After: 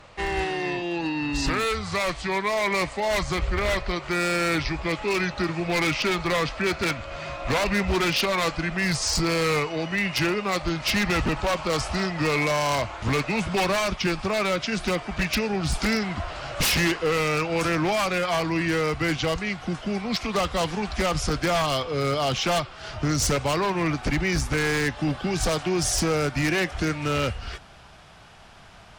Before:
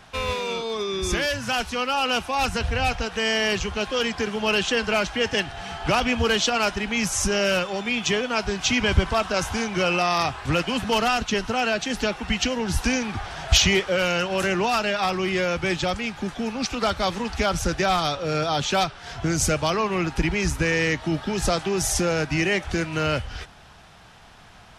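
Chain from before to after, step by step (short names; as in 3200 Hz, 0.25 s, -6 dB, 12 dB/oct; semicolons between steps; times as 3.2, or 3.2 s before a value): speed glide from 76% -> 95%; wavefolder -17 dBFS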